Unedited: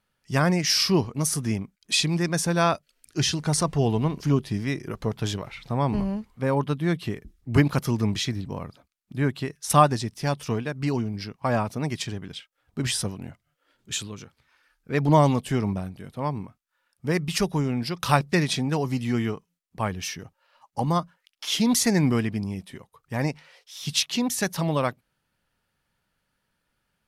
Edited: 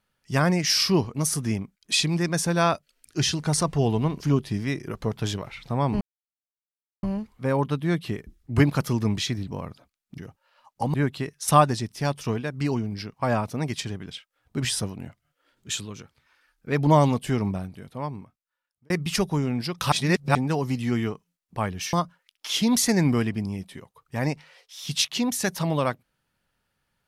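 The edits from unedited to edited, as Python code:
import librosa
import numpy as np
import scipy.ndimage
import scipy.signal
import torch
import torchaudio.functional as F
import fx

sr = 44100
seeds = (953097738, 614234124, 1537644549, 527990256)

y = fx.edit(x, sr, fx.insert_silence(at_s=6.01, length_s=1.02),
    fx.fade_out_span(start_s=15.83, length_s=1.29),
    fx.reverse_span(start_s=18.14, length_s=0.43),
    fx.move(start_s=20.15, length_s=0.76, to_s=9.16), tone=tone)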